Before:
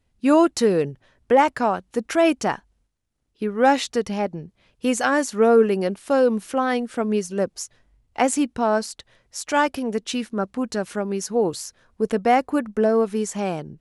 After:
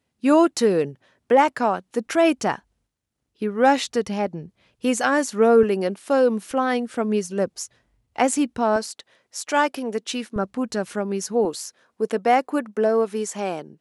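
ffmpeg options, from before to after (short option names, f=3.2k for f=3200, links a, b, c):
-af "asetnsamples=n=441:p=0,asendcmd='2.07 highpass f 70;5.63 highpass f 170;6.51 highpass f 71;8.76 highpass f 250;10.36 highpass f 75;11.45 highpass f 260',highpass=150"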